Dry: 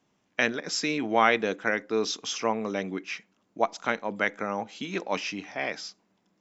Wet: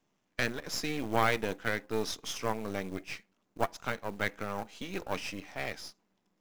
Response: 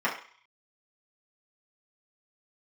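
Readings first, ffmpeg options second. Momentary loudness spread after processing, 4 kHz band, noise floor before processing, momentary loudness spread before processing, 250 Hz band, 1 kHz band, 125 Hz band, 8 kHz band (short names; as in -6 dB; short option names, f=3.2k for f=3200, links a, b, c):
12 LU, -5.5 dB, -72 dBFS, 11 LU, -6.0 dB, -6.5 dB, +2.0 dB, n/a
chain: -af "aeval=exprs='if(lt(val(0),0),0.251*val(0),val(0))':c=same,acrusher=bits=5:mode=log:mix=0:aa=0.000001,volume=-2.5dB"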